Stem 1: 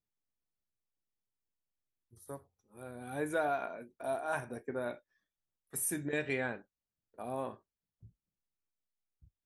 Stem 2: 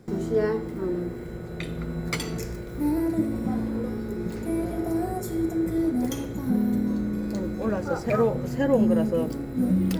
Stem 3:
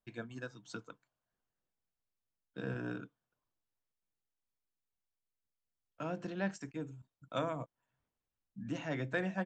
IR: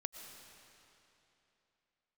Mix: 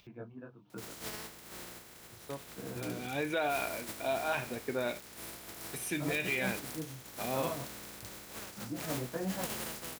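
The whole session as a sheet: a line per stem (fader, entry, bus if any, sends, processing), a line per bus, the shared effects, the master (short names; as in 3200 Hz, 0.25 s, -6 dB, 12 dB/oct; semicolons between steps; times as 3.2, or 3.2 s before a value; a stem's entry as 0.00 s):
+3.0 dB, 0.00 s, bus A, no send, band shelf 7200 Hz -10 dB
-19.0 dB, 0.70 s, no bus, no send, spectral contrast lowered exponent 0.25
+2.5 dB, 0.00 s, bus A, no send, LPF 1200 Hz 24 dB/oct; detuned doubles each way 34 cents
bus A: 0.0 dB, band shelf 3700 Hz +13.5 dB; limiter -23 dBFS, peak gain reduction 10 dB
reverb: off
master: HPF 45 Hz; upward compressor, threshold -48 dBFS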